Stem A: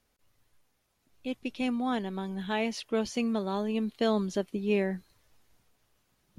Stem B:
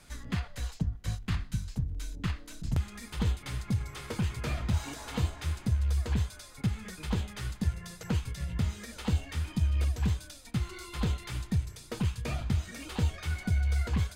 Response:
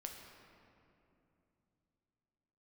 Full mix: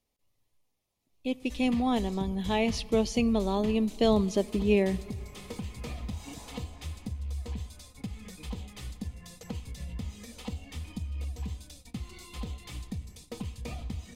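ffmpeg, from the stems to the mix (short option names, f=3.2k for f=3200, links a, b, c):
-filter_complex "[0:a]volume=2.5dB,asplit=2[a][b];[b]volume=-12.5dB[c];[1:a]aecho=1:1:4:0.41,acompressor=threshold=-30dB:ratio=6,adelay=1400,volume=-4.5dB,asplit=2[d][e];[e]volume=-8dB[f];[2:a]atrim=start_sample=2205[g];[c][f]amix=inputs=2:normalize=0[h];[h][g]afir=irnorm=-1:irlink=0[i];[a][d][i]amix=inputs=3:normalize=0,agate=range=-10dB:threshold=-50dB:ratio=16:detection=peak,equalizer=f=1.5k:w=3.1:g=-13.5"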